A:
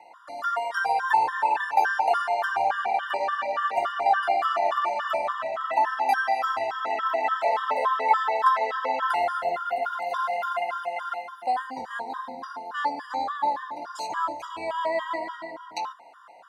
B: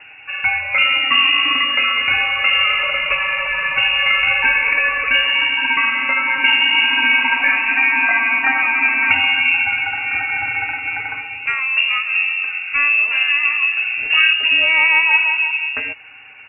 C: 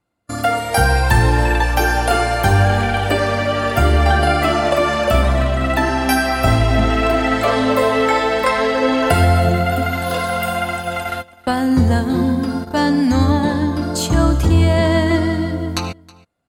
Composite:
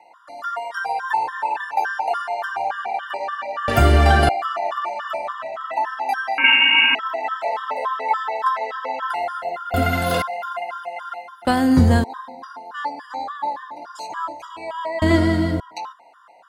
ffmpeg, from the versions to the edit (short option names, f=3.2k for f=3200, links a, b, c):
-filter_complex "[2:a]asplit=4[a][b][c][d];[0:a]asplit=6[e][f][g][h][i][j];[e]atrim=end=3.682[k];[a]atrim=start=3.678:end=4.292[l];[f]atrim=start=4.288:end=6.382[m];[1:a]atrim=start=6.378:end=6.952[n];[g]atrim=start=6.948:end=9.742[o];[b]atrim=start=9.738:end=10.222[p];[h]atrim=start=10.218:end=11.452[q];[c]atrim=start=11.448:end=12.042[r];[i]atrim=start=12.038:end=15.022[s];[d]atrim=start=15.018:end=15.602[t];[j]atrim=start=15.598[u];[k][l]acrossfade=d=0.004:c1=hsin:c2=hsin[v];[v][m]acrossfade=d=0.004:c1=hsin:c2=hsin[w];[w][n]acrossfade=d=0.004:c1=hsin:c2=hsin[x];[x][o]acrossfade=d=0.004:c1=hsin:c2=hsin[y];[y][p]acrossfade=d=0.004:c1=hsin:c2=hsin[z];[z][q]acrossfade=d=0.004:c1=hsin:c2=hsin[aa];[aa][r]acrossfade=d=0.004:c1=hsin:c2=hsin[ab];[ab][s]acrossfade=d=0.004:c1=hsin:c2=hsin[ac];[ac][t]acrossfade=d=0.004:c1=hsin:c2=hsin[ad];[ad][u]acrossfade=d=0.004:c1=hsin:c2=hsin"